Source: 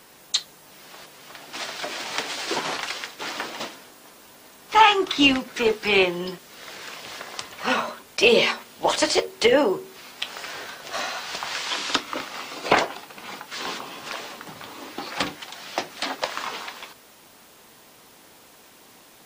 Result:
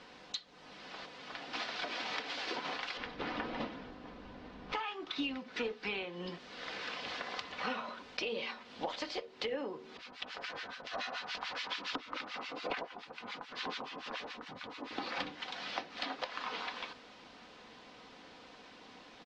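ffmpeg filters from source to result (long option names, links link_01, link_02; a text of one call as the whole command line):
ffmpeg -i in.wav -filter_complex "[0:a]asettb=1/sr,asplit=3[link_01][link_02][link_03];[link_01]atrim=end=2.974[link_04];[link_02]atrim=start=2.97:end=4.73,asetpts=PTS-STARTPTS,afade=type=in:duration=0.004:curve=qsin,afade=type=out:start_time=1.756:duration=0.004:curve=qsin,aemphasis=mode=reproduction:type=riaa[link_05];[link_03]atrim=start=4.726[link_06];[link_04][link_05]acrossfade=duration=0.004:curve1=hsin:curve2=qsin[link_07];[link_07][link_06]acrossfade=duration=0.004:curve1=qsin:curve2=hsin,asettb=1/sr,asplit=3[link_08][link_09][link_10];[link_08]atrim=end=9.974[link_11];[link_09]atrim=start=9.97:end=14.91,asetpts=PTS-STARTPTS,afade=type=in:duration=0.004:curve=qsin,afade=type=out:start_time=4.936:duration=0.004:curve=qsin,acrossover=split=1200[link_12][link_13];[link_12]aeval=exprs='val(0)*(1-1/2+1/2*cos(2*PI*7*n/s))':channel_layout=same[link_14];[link_13]aeval=exprs='val(0)*(1-1/2-1/2*cos(2*PI*7*n/s))':channel_layout=same[link_15];[link_14][link_15]amix=inputs=2:normalize=0[link_16];[link_10]atrim=start=14.906[link_17];[link_11][link_16]acrossfade=duration=0.004:curve1=hsin:curve2=qsin[link_18];[link_18][link_17]acrossfade=duration=0.004:curve1=qsin:curve2=hsin,acompressor=threshold=-32dB:ratio=16,lowpass=frequency=4700:width=0.5412,lowpass=frequency=4700:width=1.3066,aecho=1:1:4:0.36,volume=-3dB" out.wav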